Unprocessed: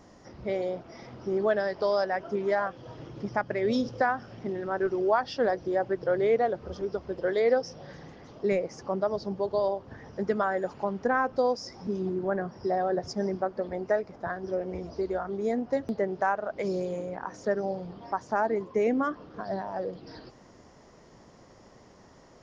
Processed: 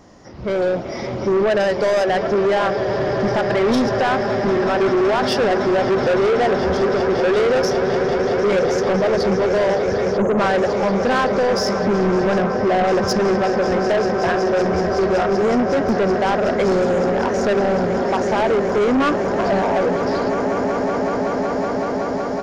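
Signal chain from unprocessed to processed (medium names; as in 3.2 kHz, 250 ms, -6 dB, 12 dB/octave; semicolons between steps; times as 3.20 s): peak limiter -21 dBFS, peak gain reduction 8.5 dB; echo with a slow build-up 187 ms, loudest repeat 8, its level -14.5 dB; 10.18–10.39 s: spectral selection erased 1.4–6.2 kHz; 12.38–12.84 s: treble shelf 2.9 kHz -9 dB; saturation -31 dBFS, distortion -9 dB; level rider gain up to 11 dB; trim +6.5 dB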